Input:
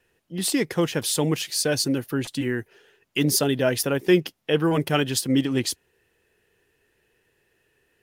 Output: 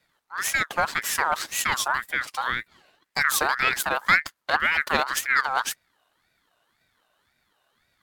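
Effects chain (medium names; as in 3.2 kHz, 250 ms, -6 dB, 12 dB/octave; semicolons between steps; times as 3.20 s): partial rectifier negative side -7 dB; ring modulator with a swept carrier 1.5 kHz, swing 30%, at 1.9 Hz; trim +3 dB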